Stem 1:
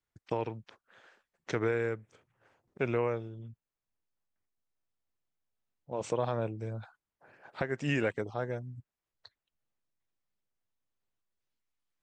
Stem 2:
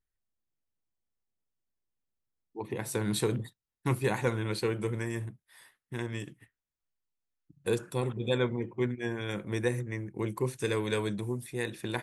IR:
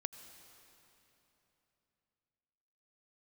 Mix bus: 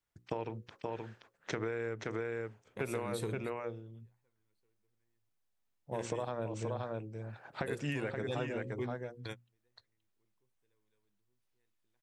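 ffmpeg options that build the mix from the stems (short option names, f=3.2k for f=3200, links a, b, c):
-filter_complex "[0:a]bandreject=f=60:t=h:w=6,bandreject=f=120:t=h:w=6,bandreject=f=180:t=h:w=6,bandreject=f=240:t=h:w=6,bandreject=f=300:t=h:w=6,bandreject=f=360:t=h:w=6,bandreject=f=420:t=h:w=6,bandreject=f=480:t=h:w=6,bandreject=f=540:t=h:w=6,volume=0.5dB,asplit=3[a][b][c];[b]volume=-5.5dB[d];[1:a]acontrast=64,volume=-13.5dB[e];[c]apad=whole_len=530253[f];[e][f]sidechaingate=range=-45dB:threshold=-60dB:ratio=16:detection=peak[g];[d]aecho=0:1:525:1[h];[a][g][h]amix=inputs=3:normalize=0,acompressor=threshold=-32dB:ratio=10"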